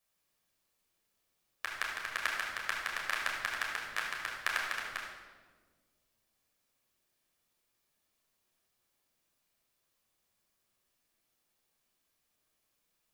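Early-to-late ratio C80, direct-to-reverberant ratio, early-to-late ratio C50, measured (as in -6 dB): 3.5 dB, -4.0 dB, 1.5 dB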